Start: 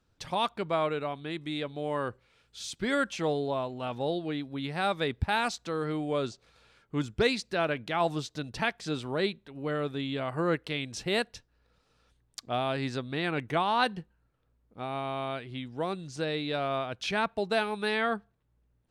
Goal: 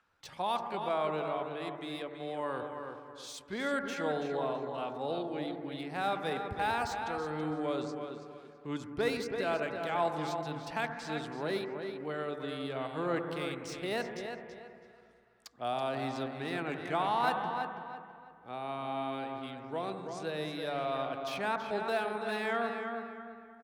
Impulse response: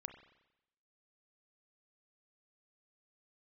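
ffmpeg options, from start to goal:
-filter_complex "[0:a]equalizer=frequency=800:width_type=o:width=0.64:gain=3[link_01];[1:a]atrim=start_sample=2205,asetrate=25578,aresample=44100[link_02];[link_01][link_02]afir=irnorm=-1:irlink=0,acrossover=split=350|1000|2200[link_03][link_04][link_05][link_06];[link_05]acompressor=mode=upward:threshold=-59dB:ratio=2.5[link_07];[link_06]asoftclip=type=hard:threshold=-38dB[link_08];[link_03][link_04][link_07][link_08]amix=inputs=4:normalize=0,atempo=0.8,lowshelf=frequency=120:gain=-12,asplit=2[link_09][link_10];[link_10]adelay=329,lowpass=frequency=3900:poles=1,volume=-6.5dB,asplit=2[link_11][link_12];[link_12]adelay=329,lowpass=frequency=3900:poles=1,volume=0.31,asplit=2[link_13][link_14];[link_14]adelay=329,lowpass=frequency=3900:poles=1,volume=0.31,asplit=2[link_15][link_16];[link_16]adelay=329,lowpass=frequency=3900:poles=1,volume=0.31[link_17];[link_09][link_11][link_13][link_15][link_17]amix=inputs=5:normalize=0,volume=-3.5dB"

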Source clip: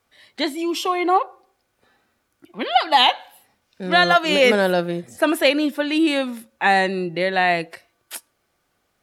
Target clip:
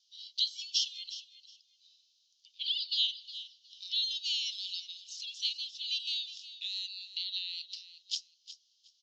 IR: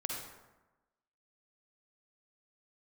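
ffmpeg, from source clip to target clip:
-af "equalizer=frequency=4800:width=1.3:gain=9.5,acompressor=threshold=-25dB:ratio=5,asuperpass=centerf=4500:order=12:qfactor=1.2,aecho=1:1:363|726:0.2|0.0399"

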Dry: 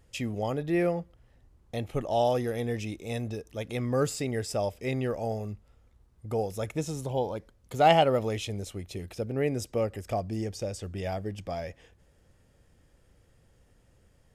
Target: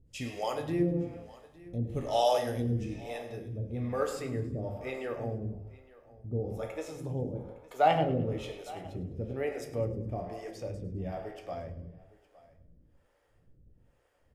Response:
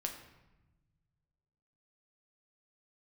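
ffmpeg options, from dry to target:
-filter_complex "[0:a]asetnsamples=nb_out_samples=441:pad=0,asendcmd='2.85 equalizer g -10.5',equalizer=frequency=7600:width_type=o:width=2.6:gain=6,aecho=1:1:861:0.0891[link_01];[1:a]atrim=start_sample=2205,afade=type=out:start_time=0.42:duration=0.01,atrim=end_sample=18963[link_02];[link_01][link_02]afir=irnorm=-1:irlink=0,acrossover=split=420[link_03][link_04];[link_03]aeval=exprs='val(0)*(1-1/2+1/2*cos(2*PI*1.1*n/s))':channel_layout=same[link_05];[link_04]aeval=exprs='val(0)*(1-1/2-1/2*cos(2*PI*1.1*n/s))':channel_layout=same[link_06];[link_05][link_06]amix=inputs=2:normalize=0,asplit=5[link_07][link_08][link_09][link_10][link_11];[link_08]adelay=103,afreqshift=-32,volume=-16dB[link_12];[link_09]adelay=206,afreqshift=-64,volume=-22.4dB[link_13];[link_10]adelay=309,afreqshift=-96,volume=-28.8dB[link_14];[link_11]adelay=412,afreqshift=-128,volume=-35.1dB[link_15];[link_07][link_12][link_13][link_14][link_15]amix=inputs=5:normalize=0,volume=1.5dB"

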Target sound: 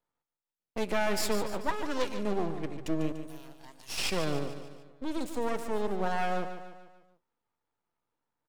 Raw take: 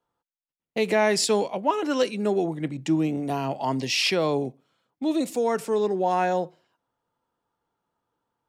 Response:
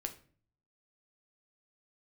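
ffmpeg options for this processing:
-filter_complex "[0:a]asettb=1/sr,asplit=3[link_01][link_02][link_03];[link_01]atrim=end=3.124[link_04];[link_02]atrim=start=3.12:end=3.98,asetpts=PTS-STARTPTS,afade=type=in:duration=0.004:curve=qsin,afade=type=out:start_time=0.856:duration=0.004:curve=qsin,aderivative[link_05];[link_03]atrim=start=3.976[link_06];[link_04][link_05]acrossfade=duration=0.004:curve1=hsin:curve2=qsin[link_07];[link_07][link_06]acrossfade=duration=0.004:curve1=qsin:curve2=hsin,aeval=exprs='max(val(0),0)':channel_layout=same,aecho=1:1:146|292|438|584|730:0.316|0.158|0.0791|0.0395|0.0198,volume=-4dB"

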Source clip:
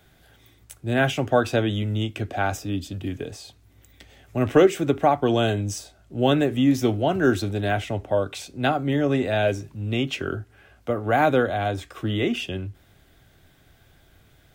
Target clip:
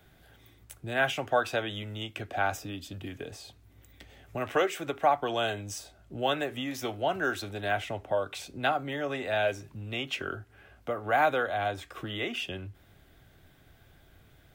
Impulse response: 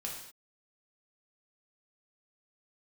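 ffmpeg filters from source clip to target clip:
-filter_complex "[0:a]equalizer=frequency=6700:width=0.65:gain=-4,acrossover=split=580[link_01][link_02];[link_01]acompressor=threshold=-36dB:ratio=6[link_03];[link_03][link_02]amix=inputs=2:normalize=0,volume=-2dB"

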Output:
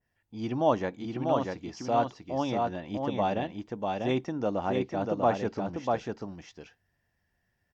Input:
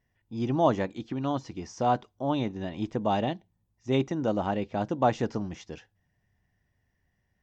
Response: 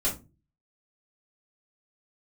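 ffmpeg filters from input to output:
-af "lowshelf=frequency=270:gain=-7,aecho=1:1:618:0.668,asetrate=42336,aresample=44100,adynamicequalizer=threshold=0.00501:dfrequency=1900:dqfactor=0.7:tfrequency=1900:tqfactor=0.7:attack=5:release=100:ratio=0.375:range=2:mode=cutabove:tftype=highshelf"

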